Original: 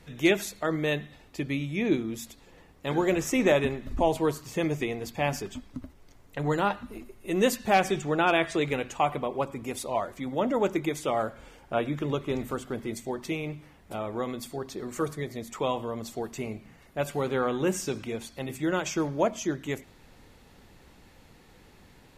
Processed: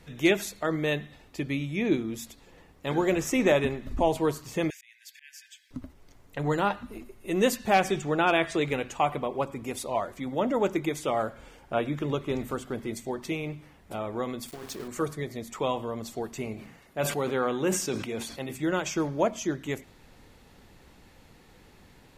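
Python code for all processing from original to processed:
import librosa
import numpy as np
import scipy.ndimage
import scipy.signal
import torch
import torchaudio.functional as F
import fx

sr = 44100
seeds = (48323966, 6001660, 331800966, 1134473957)

y = fx.chain(x, sr, fx.brickwall_highpass(low_hz=1500.0),
    fx.auto_swell(attack_ms=479.0), at=(4.7, 5.71))
y = fx.chain(y, sr, fx.high_shelf(hz=8800.0, db=7.5),
    fx.over_compress(threshold_db=-38.0, ratio=-1.0),
    fx.sample_gate(floor_db=-41.0), at=(14.48, 14.88))
y = fx.chain(y, sr, fx.low_shelf(hz=83.0, db=-10.5),
    fx.sustainer(db_per_s=67.0), at=(16.54, 18.53))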